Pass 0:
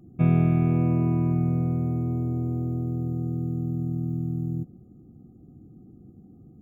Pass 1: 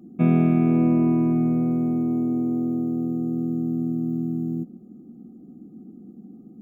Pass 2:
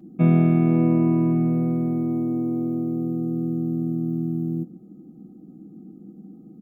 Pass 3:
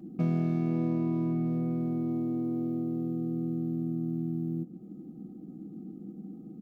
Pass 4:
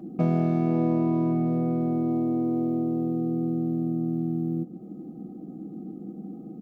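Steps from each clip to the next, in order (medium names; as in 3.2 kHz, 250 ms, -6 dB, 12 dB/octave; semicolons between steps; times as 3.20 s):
resonant low shelf 150 Hz -12.5 dB, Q 3; trim +2.5 dB
comb 6.3 ms, depth 45%; on a send at -17.5 dB: reverberation RT60 0.35 s, pre-delay 4 ms
median filter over 15 samples; compression 2:1, threshold -34 dBFS, peak gain reduction 11.5 dB
peaking EQ 690 Hz +9.5 dB 1.8 oct; trim +2.5 dB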